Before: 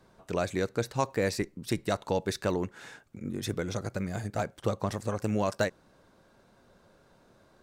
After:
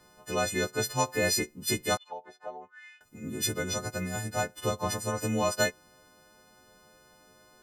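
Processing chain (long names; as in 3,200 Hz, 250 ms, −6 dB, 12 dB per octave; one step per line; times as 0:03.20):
every partial snapped to a pitch grid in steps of 3 semitones
0:01.97–0:03.01: envelope filter 730–3,700 Hz, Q 6.4, down, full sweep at −25.5 dBFS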